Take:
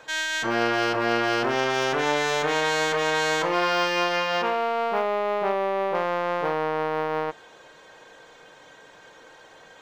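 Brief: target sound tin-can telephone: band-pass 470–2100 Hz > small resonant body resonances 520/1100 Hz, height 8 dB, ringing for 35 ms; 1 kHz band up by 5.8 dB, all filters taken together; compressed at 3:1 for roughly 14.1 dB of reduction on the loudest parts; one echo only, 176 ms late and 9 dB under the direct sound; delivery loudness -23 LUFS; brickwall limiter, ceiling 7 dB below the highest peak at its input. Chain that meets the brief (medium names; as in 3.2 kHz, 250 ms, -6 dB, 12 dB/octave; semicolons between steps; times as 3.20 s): peaking EQ 1 kHz +8 dB; compression 3:1, threshold -35 dBFS; peak limiter -27.5 dBFS; band-pass 470–2100 Hz; delay 176 ms -9 dB; small resonant body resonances 520/1100 Hz, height 8 dB, ringing for 35 ms; trim +13.5 dB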